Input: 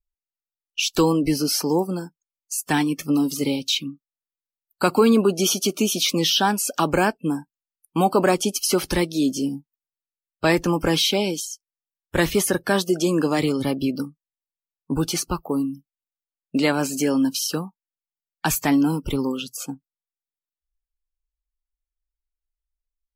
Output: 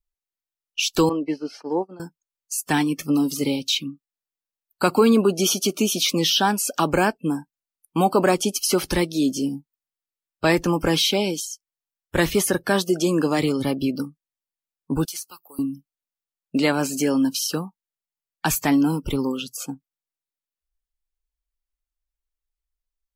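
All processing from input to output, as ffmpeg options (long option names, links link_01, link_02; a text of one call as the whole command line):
ffmpeg -i in.wav -filter_complex "[0:a]asettb=1/sr,asplit=3[link_01][link_02][link_03];[link_01]atrim=end=1.094[link_04];[link_02]atrim=start=1.09:end=2,asetpts=PTS-STARTPTS,afade=type=in:duration=0.004:curve=qsin,afade=type=out:start_time=0.906:duration=0.004:curve=qsin,agate=range=-33dB:threshold=-18dB:ratio=3:release=100:detection=peak,highpass=290,lowpass=2500[link_05];[link_03]atrim=start=1.996[link_06];[link_04][link_05]acrossfade=duration=0.004:curve1=hsin:curve2=qsin[link_07];[link_07][link_06]acrossfade=duration=0.004:curve1=qsin:curve2=hsin,asettb=1/sr,asplit=3[link_08][link_09][link_10];[link_08]atrim=end=15.054[link_11];[link_09]atrim=start=15.05:end=15.59,asetpts=PTS-STARTPTS,afade=type=in:duration=0.004:curve=qsin,afade=type=out:start_time=0.536:duration=0.004:curve=qsin,aderivative,acompressor=threshold=-28dB:ratio=6:attack=3.2:release=140:knee=1:detection=peak[link_12];[link_10]atrim=start=15.586[link_13];[link_11][link_12]acrossfade=duration=0.004:curve1=hsin:curve2=qsin[link_14];[link_14][link_13]acrossfade=duration=0.004:curve1=qsin:curve2=hsin" out.wav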